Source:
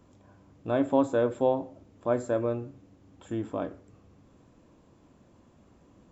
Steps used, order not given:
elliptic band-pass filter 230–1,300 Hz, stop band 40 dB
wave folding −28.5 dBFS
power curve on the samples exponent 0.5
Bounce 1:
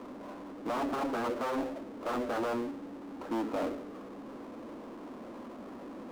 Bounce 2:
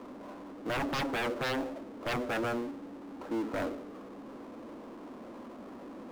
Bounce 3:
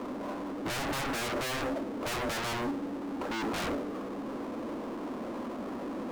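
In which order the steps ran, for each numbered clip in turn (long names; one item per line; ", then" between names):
wave folding, then elliptic band-pass filter, then power curve on the samples
elliptic band-pass filter, then wave folding, then power curve on the samples
elliptic band-pass filter, then power curve on the samples, then wave folding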